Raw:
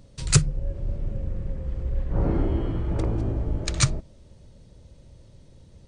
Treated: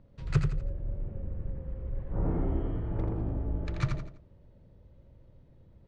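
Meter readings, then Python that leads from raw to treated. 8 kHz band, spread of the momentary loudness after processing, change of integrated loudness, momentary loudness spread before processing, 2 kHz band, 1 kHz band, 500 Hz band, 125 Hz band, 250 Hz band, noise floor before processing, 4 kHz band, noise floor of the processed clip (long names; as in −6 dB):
below −25 dB, 9 LU, −7.0 dB, 11 LU, −10.0 dB, −6.5 dB, −6.5 dB, −6.0 dB, −6.0 dB, −52 dBFS, −20.0 dB, −58 dBFS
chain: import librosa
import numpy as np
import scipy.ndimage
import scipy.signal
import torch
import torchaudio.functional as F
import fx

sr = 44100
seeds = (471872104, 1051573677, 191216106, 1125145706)

y = scipy.signal.sosfilt(scipy.signal.butter(2, 1900.0, 'lowpass', fs=sr, output='sos'), x)
y = fx.echo_feedback(y, sr, ms=84, feedback_pct=35, wet_db=-5.5)
y = y * librosa.db_to_amplitude(-7.5)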